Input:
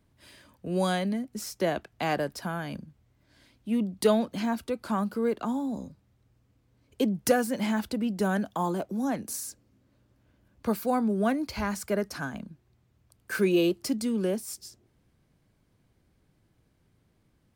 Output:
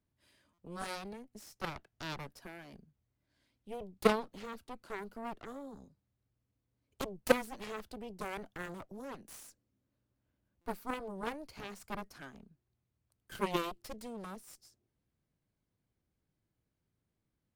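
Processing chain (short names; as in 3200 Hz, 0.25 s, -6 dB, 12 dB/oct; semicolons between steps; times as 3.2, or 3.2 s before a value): added harmonics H 3 -8 dB, 6 -24 dB, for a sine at -12.5 dBFS; stuck buffer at 0.53/10.61, samples 256, times 8; gain -2 dB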